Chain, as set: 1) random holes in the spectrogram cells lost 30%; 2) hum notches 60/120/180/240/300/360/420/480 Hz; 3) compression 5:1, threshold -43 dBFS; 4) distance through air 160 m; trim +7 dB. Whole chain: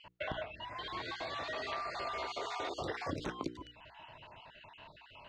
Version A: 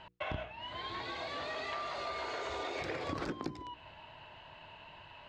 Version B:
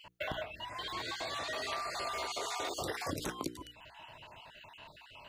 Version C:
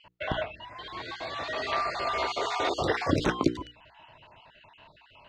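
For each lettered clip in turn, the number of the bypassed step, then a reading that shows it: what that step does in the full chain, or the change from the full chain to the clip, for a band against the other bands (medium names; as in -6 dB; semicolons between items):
1, momentary loudness spread change -2 LU; 4, 8 kHz band +12.0 dB; 3, mean gain reduction 6.5 dB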